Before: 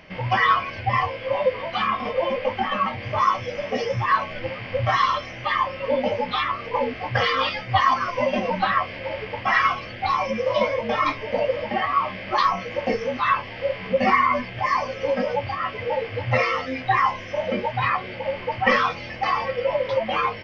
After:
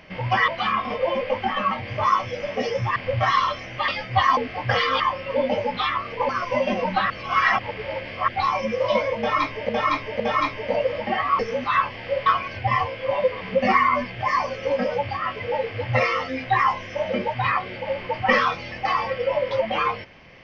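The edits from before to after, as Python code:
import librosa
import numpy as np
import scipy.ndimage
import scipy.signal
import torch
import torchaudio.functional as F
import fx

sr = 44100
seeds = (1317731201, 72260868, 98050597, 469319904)

y = fx.edit(x, sr, fx.move(start_s=0.48, length_s=1.15, to_s=13.79),
    fx.cut(start_s=4.11, length_s=0.51),
    fx.swap(start_s=5.54, length_s=1.29, other_s=7.46, other_length_s=0.49),
    fx.reverse_span(start_s=8.76, length_s=1.18),
    fx.repeat(start_s=10.84, length_s=0.51, count=3),
    fx.cut(start_s=12.03, length_s=0.89), tone=tone)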